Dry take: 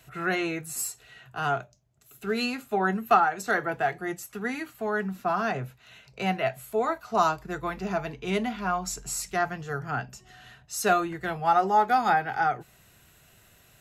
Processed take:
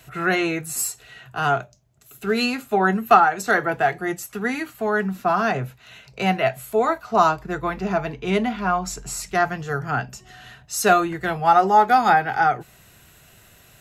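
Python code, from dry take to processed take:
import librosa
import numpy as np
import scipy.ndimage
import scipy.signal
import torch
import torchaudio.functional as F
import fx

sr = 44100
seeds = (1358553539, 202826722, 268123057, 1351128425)

y = fx.high_shelf(x, sr, hz=4300.0, db=-6.5, at=(7.01, 9.35))
y = y * 10.0 ** (6.5 / 20.0)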